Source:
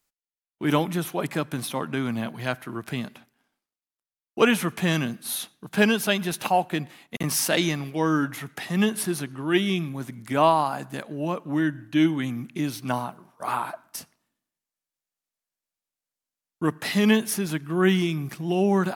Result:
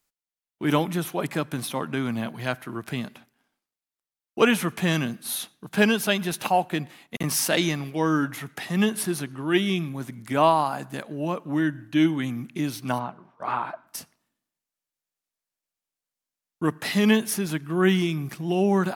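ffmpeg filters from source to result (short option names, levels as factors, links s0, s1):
-filter_complex "[0:a]asplit=3[s0][s1][s2];[s0]afade=t=out:st=12.98:d=0.02[s3];[s1]lowpass=3100,afade=t=in:st=12.98:d=0.02,afade=t=out:st=13.86:d=0.02[s4];[s2]afade=t=in:st=13.86:d=0.02[s5];[s3][s4][s5]amix=inputs=3:normalize=0"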